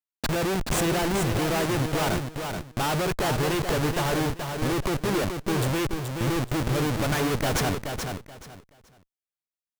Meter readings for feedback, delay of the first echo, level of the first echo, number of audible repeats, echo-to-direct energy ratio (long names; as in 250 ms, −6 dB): 23%, 428 ms, −6.0 dB, 3, −6.0 dB